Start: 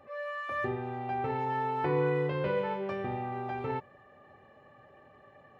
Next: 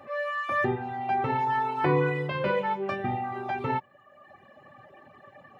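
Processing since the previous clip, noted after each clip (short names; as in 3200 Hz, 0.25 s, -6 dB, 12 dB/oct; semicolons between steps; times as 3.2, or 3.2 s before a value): HPF 110 Hz; reverb removal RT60 1.3 s; bell 450 Hz -8.5 dB 0.29 oct; gain +9 dB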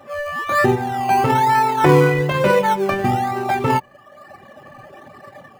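AGC gain up to 6.5 dB; in parallel at -12 dB: decimation with a swept rate 19×, swing 60% 1.1 Hz; on the sum: gain +3.5 dB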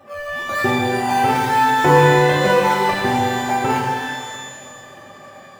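shimmer reverb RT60 1.8 s, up +12 st, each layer -8 dB, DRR -1.5 dB; gain -4 dB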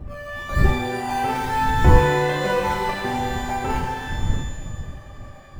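wind noise 85 Hz -17 dBFS; gain -6.5 dB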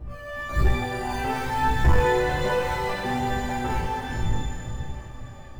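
chorus voices 2, 0.6 Hz, delay 17 ms, depth 1.7 ms; soft clip -9.5 dBFS, distortion -17 dB; diffused feedback echo 0.454 s, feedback 48%, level -12 dB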